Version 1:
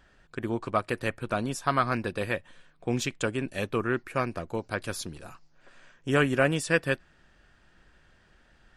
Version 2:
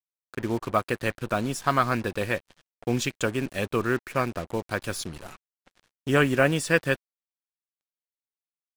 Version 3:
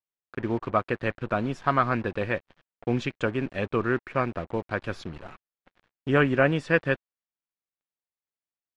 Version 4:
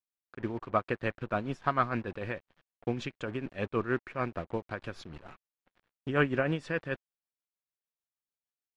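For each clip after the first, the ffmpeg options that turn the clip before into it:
-af "acrusher=bits=6:mix=0:aa=0.5,volume=1.33"
-af "lowpass=2600"
-af "tremolo=f=6.6:d=0.62,volume=0.668"

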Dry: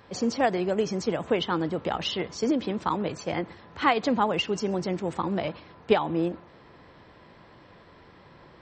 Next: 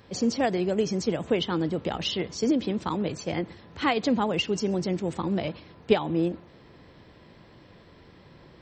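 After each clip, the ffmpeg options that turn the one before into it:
-af "equalizer=f=1100:w=0.64:g=-8,volume=1.41"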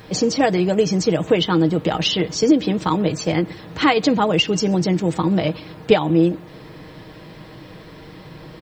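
-filter_complex "[0:a]aecho=1:1:6.4:0.51,asplit=2[s0][s1];[s1]acompressor=threshold=0.0224:ratio=6,volume=1[s2];[s0][s2]amix=inputs=2:normalize=0,acrusher=bits=10:mix=0:aa=0.000001,volume=1.88"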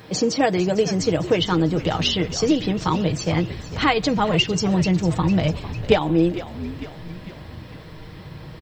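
-filter_complex "[0:a]highpass=68,asubboost=boost=8:cutoff=100,asplit=7[s0][s1][s2][s3][s4][s5][s6];[s1]adelay=451,afreqshift=-81,volume=0.211[s7];[s2]adelay=902,afreqshift=-162,volume=0.12[s8];[s3]adelay=1353,afreqshift=-243,volume=0.0684[s9];[s4]adelay=1804,afreqshift=-324,volume=0.0394[s10];[s5]adelay=2255,afreqshift=-405,volume=0.0224[s11];[s6]adelay=2706,afreqshift=-486,volume=0.0127[s12];[s0][s7][s8][s9][s10][s11][s12]amix=inputs=7:normalize=0,volume=0.841"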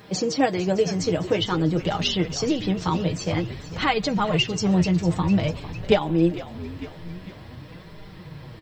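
-af "flanger=delay=4.9:depth=6.8:regen=44:speed=0.5:shape=sinusoidal,volume=1.12"

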